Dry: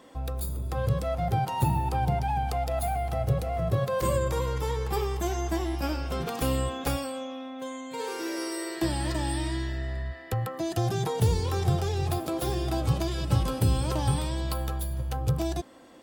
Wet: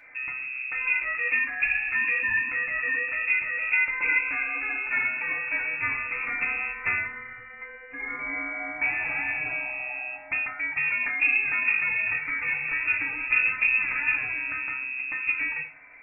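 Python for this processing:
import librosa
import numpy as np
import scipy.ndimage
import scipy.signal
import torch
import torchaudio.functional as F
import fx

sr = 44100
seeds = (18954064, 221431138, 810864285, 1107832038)

y = fx.freq_invert(x, sr, carrier_hz=2600)
y = fx.rev_fdn(y, sr, rt60_s=0.37, lf_ratio=1.1, hf_ratio=0.85, size_ms=20.0, drr_db=0.0)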